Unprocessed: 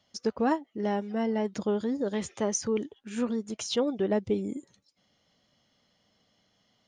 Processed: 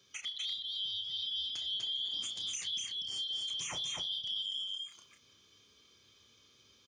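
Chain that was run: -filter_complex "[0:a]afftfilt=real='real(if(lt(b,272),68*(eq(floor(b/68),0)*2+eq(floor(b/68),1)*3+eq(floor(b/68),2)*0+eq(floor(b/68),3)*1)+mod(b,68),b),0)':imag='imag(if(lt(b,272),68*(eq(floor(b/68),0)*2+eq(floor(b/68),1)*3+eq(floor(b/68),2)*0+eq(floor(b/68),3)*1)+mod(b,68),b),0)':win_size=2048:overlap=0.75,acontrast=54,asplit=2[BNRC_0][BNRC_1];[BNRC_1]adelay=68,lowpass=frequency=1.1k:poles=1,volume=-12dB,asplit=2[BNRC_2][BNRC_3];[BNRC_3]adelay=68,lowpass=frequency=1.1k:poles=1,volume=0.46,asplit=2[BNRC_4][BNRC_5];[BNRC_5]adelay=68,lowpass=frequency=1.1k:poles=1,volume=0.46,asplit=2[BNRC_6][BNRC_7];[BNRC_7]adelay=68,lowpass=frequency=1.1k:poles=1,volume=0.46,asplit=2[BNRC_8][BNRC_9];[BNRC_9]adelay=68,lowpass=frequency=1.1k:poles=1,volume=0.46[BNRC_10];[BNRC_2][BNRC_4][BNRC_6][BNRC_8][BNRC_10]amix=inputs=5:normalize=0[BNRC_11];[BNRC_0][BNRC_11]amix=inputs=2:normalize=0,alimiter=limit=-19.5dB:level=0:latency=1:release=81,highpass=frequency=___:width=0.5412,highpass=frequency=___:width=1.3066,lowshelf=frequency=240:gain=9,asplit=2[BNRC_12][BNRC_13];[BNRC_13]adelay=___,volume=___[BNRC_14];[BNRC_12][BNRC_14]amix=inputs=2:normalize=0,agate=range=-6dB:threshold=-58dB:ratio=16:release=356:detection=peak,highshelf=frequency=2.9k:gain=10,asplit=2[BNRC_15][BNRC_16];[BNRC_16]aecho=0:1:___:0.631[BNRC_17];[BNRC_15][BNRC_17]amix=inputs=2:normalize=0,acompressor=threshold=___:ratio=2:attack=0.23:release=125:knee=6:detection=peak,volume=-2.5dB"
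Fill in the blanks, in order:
69, 69, 30, -7dB, 246, -43dB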